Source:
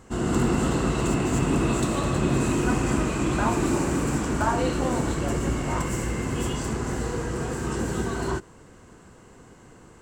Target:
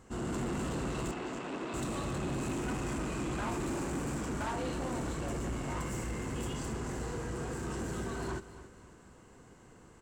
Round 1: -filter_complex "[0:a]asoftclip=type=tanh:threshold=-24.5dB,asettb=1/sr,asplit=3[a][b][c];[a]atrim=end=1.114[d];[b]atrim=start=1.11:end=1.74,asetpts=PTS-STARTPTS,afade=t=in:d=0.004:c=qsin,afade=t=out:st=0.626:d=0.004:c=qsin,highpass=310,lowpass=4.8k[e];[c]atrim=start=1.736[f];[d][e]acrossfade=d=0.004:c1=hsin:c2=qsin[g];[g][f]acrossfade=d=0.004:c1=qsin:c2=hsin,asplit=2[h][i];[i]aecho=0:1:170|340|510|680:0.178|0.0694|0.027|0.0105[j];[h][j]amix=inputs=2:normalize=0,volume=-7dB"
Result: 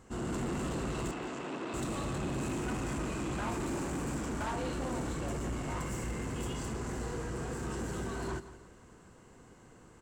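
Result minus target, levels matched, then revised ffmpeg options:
echo 0.104 s early
-filter_complex "[0:a]asoftclip=type=tanh:threshold=-24.5dB,asettb=1/sr,asplit=3[a][b][c];[a]atrim=end=1.114[d];[b]atrim=start=1.11:end=1.74,asetpts=PTS-STARTPTS,afade=t=in:d=0.004:c=qsin,afade=t=out:st=0.626:d=0.004:c=qsin,highpass=310,lowpass=4.8k[e];[c]atrim=start=1.736[f];[d][e]acrossfade=d=0.004:c1=hsin:c2=qsin[g];[g][f]acrossfade=d=0.004:c1=qsin:c2=hsin,asplit=2[h][i];[i]aecho=0:1:274|548|822|1096:0.178|0.0694|0.027|0.0105[j];[h][j]amix=inputs=2:normalize=0,volume=-7dB"

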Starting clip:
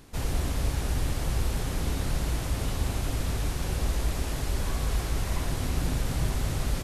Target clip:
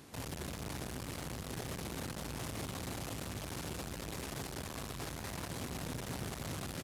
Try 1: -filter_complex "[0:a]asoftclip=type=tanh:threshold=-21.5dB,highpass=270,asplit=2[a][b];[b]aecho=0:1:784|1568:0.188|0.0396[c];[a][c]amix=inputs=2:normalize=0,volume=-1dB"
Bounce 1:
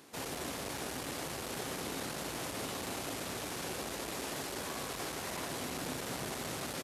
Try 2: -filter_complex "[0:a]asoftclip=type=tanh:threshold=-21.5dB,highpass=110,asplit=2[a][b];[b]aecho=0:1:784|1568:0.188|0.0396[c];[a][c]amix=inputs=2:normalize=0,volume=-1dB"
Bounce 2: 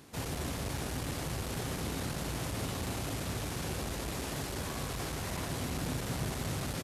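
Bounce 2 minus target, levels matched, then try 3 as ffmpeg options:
soft clip: distortion -10 dB
-filter_complex "[0:a]asoftclip=type=tanh:threshold=-33.5dB,highpass=110,asplit=2[a][b];[b]aecho=0:1:784|1568:0.188|0.0396[c];[a][c]amix=inputs=2:normalize=0,volume=-1dB"

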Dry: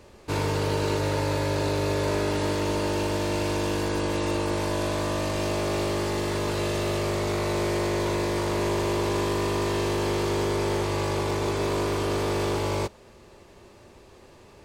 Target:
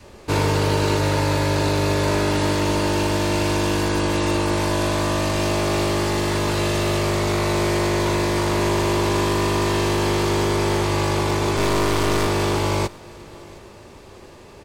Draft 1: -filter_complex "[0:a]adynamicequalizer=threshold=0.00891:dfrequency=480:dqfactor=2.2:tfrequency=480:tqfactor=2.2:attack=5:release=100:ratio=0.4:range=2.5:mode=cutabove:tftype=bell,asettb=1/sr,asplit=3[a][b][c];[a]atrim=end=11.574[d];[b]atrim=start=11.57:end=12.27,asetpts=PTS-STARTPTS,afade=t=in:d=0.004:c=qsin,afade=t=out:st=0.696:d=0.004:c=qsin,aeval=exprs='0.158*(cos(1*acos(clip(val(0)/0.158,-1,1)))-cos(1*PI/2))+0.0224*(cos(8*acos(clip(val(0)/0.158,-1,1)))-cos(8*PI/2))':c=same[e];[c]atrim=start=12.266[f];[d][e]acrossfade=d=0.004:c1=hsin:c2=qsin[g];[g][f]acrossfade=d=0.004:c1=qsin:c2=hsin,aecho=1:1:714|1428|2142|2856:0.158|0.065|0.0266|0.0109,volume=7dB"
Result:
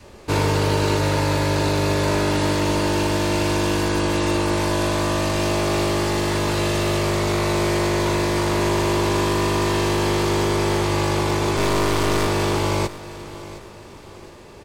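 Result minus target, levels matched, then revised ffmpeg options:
echo-to-direct +7 dB
-filter_complex "[0:a]adynamicequalizer=threshold=0.00891:dfrequency=480:dqfactor=2.2:tfrequency=480:tqfactor=2.2:attack=5:release=100:ratio=0.4:range=2.5:mode=cutabove:tftype=bell,asettb=1/sr,asplit=3[a][b][c];[a]atrim=end=11.574[d];[b]atrim=start=11.57:end=12.27,asetpts=PTS-STARTPTS,afade=t=in:d=0.004:c=qsin,afade=t=out:st=0.696:d=0.004:c=qsin,aeval=exprs='0.158*(cos(1*acos(clip(val(0)/0.158,-1,1)))-cos(1*PI/2))+0.0224*(cos(8*acos(clip(val(0)/0.158,-1,1)))-cos(8*PI/2))':c=same[e];[c]atrim=start=12.266[f];[d][e]acrossfade=d=0.004:c1=hsin:c2=qsin[g];[g][f]acrossfade=d=0.004:c1=qsin:c2=hsin,aecho=1:1:714|1428|2142:0.0708|0.029|0.0119,volume=7dB"

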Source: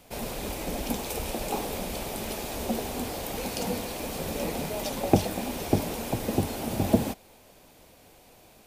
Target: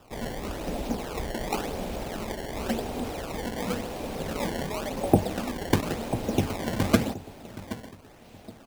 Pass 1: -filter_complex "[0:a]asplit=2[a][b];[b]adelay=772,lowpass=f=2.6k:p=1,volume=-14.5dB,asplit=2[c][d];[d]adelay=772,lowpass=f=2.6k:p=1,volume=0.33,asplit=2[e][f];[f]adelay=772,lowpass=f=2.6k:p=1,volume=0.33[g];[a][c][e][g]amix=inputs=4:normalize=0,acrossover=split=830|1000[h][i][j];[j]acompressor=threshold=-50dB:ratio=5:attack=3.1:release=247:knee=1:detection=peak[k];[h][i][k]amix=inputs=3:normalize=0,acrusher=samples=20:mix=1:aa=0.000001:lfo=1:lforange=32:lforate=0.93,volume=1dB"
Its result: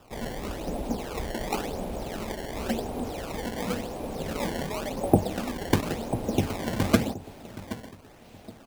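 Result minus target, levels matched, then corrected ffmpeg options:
compressor: peak gain reduction +6.5 dB
-filter_complex "[0:a]asplit=2[a][b];[b]adelay=772,lowpass=f=2.6k:p=1,volume=-14.5dB,asplit=2[c][d];[d]adelay=772,lowpass=f=2.6k:p=1,volume=0.33,asplit=2[e][f];[f]adelay=772,lowpass=f=2.6k:p=1,volume=0.33[g];[a][c][e][g]amix=inputs=4:normalize=0,acrossover=split=830|1000[h][i][j];[j]acompressor=threshold=-42dB:ratio=5:attack=3.1:release=247:knee=1:detection=peak[k];[h][i][k]amix=inputs=3:normalize=0,acrusher=samples=20:mix=1:aa=0.000001:lfo=1:lforange=32:lforate=0.93,volume=1dB"

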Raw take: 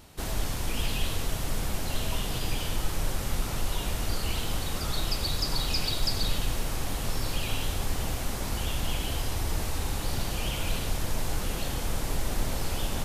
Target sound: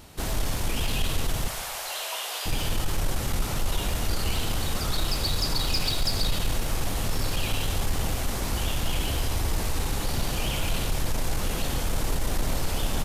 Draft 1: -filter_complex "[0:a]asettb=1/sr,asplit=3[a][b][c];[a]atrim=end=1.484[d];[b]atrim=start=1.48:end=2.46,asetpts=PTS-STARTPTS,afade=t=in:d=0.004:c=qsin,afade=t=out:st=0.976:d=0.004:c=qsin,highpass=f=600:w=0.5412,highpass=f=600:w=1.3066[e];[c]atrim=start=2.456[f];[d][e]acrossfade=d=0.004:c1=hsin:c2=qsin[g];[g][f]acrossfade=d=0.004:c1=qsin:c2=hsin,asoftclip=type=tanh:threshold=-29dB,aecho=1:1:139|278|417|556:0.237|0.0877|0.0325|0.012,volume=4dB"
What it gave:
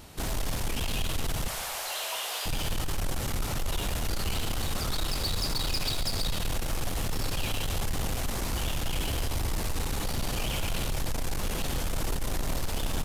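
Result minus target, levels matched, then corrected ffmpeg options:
soft clip: distortion +8 dB
-filter_complex "[0:a]asettb=1/sr,asplit=3[a][b][c];[a]atrim=end=1.484[d];[b]atrim=start=1.48:end=2.46,asetpts=PTS-STARTPTS,afade=t=in:d=0.004:c=qsin,afade=t=out:st=0.976:d=0.004:c=qsin,highpass=f=600:w=0.5412,highpass=f=600:w=1.3066[e];[c]atrim=start=2.456[f];[d][e]acrossfade=d=0.004:c1=hsin:c2=qsin[g];[g][f]acrossfade=d=0.004:c1=qsin:c2=hsin,asoftclip=type=tanh:threshold=-21dB,aecho=1:1:139|278|417|556:0.237|0.0877|0.0325|0.012,volume=4dB"

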